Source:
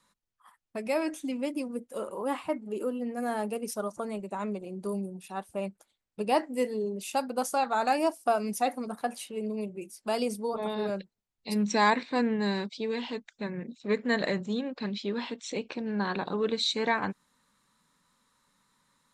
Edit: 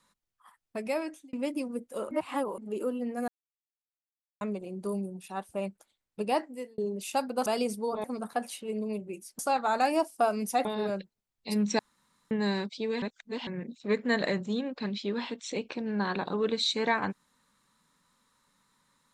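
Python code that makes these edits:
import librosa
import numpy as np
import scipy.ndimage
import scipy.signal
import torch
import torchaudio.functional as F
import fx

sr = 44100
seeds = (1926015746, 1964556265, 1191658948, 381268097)

y = fx.edit(x, sr, fx.fade_out_span(start_s=0.82, length_s=0.51),
    fx.reverse_span(start_s=2.11, length_s=0.47),
    fx.silence(start_s=3.28, length_s=1.13),
    fx.fade_out_span(start_s=6.2, length_s=0.58),
    fx.swap(start_s=7.46, length_s=1.26, other_s=10.07, other_length_s=0.58),
    fx.room_tone_fill(start_s=11.79, length_s=0.52),
    fx.reverse_span(start_s=13.02, length_s=0.45), tone=tone)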